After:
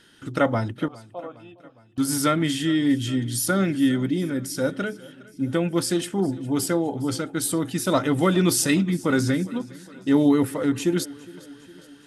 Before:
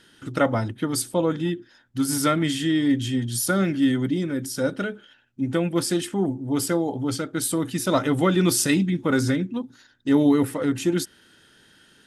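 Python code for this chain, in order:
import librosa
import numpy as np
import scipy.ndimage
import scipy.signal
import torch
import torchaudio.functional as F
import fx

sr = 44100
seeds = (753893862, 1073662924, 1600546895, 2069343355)

y = fx.vowel_filter(x, sr, vowel='a', at=(0.88, 1.98))
y = fx.echo_feedback(y, sr, ms=410, feedback_pct=59, wet_db=-21)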